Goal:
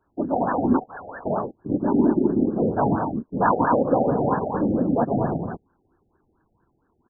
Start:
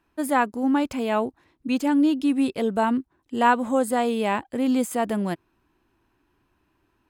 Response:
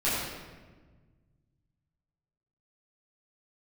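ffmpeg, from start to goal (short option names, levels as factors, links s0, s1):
-filter_complex "[0:a]aecho=1:1:122.4|215.7:0.447|0.562,asplit=2[s0][s1];[s1]asoftclip=type=hard:threshold=0.141,volume=0.596[s2];[s0][s2]amix=inputs=2:normalize=0,crystalizer=i=3:c=0,asettb=1/sr,asplit=3[s3][s4][s5];[s3]atrim=end=0.794[s6];[s4]atrim=start=0.79:end=1.26,asetpts=PTS-STARTPTS,afade=t=in:d=0.004:c=qsin,afade=t=out:st=0.466:d=0.004:c=qsin,lowpass=f=2600:t=q:w=0.5098,lowpass=f=2600:t=q:w=0.6013,lowpass=f=2600:t=q:w=0.9,lowpass=f=2600:t=q:w=2.563,afreqshift=-3100[s7];[s5]atrim=start=1.256[s8];[s6][s7]acrossfade=d=0.004:c1=hsin:c2=qsin[s9];[s9][s8]acrossfade=d=0.004:c1=qsin:c2=hsin,afftfilt=real='hypot(re,im)*cos(2*PI*random(0))':imag='hypot(re,im)*sin(2*PI*random(1))':win_size=512:overlap=0.75,afftfilt=real='re*lt(b*sr/1024,800*pow(1800/800,0.5+0.5*sin(2*PI*4.4*pts/sr)))':imag='im*lt(b*sr/1024,800*pow(1800/800,0.5+0.5*sin(2*PI*4.4*pts/sr)))':win_size=1024:overlap=0.75,volume=1.33"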